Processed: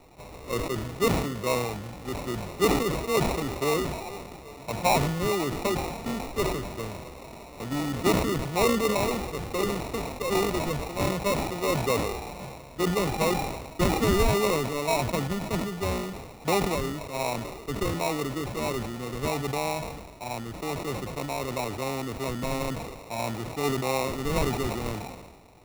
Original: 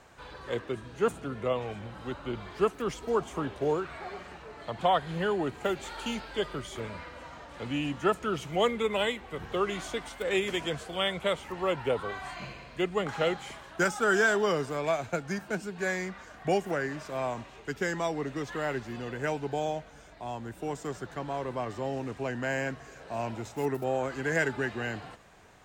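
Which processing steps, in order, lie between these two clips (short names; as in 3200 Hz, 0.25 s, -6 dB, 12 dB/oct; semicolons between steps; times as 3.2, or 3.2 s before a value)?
sample-rate reducer 1600 Hz, jitter 0%; sustainer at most 45 dB/s; gain +2 dB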